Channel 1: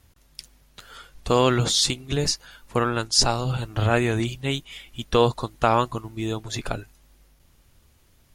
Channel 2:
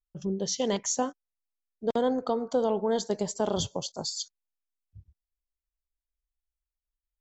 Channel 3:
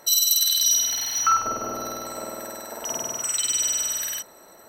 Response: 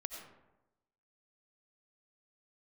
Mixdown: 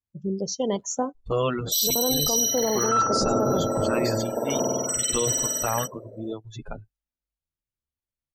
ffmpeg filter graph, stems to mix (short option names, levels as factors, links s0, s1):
-filter_complex "[0:a]asplit=2[s0][s1];[s1]adelay=8.7,afreqshift=2.5[s2];[s0][s2]amix=inputs=2:normalize=1,volume=0.708[s3];[1:a]adynamicequalizer=threshold=0.00708:dfrequency=1700:dqfactor=0.7:tfrequency=1700:tqfactor=0.7:attack=5:release=100:ratio=0.375:range=2:mode=cutabove:tftype=highshelf,volume=1.33[s4];[2:a]equalizer=f=125:t=o:w=1:g=11,equalizer=f=250:t=o:w=1:g=9,equalizer=f=500:t=o:w=1:g=11,equalizer=f=2000:t=o:w=1:g=5,equalizer=f=4000:t=o:w=1:g=-5,acontrast=88,adelay=1650,volume=0.473[s5];[s3][s4][s5]amix=inputs=3:normalize=0,afftdn=nr=31:nf=-32,alimiter=limit=0.2:level=0:latency=1:release=13"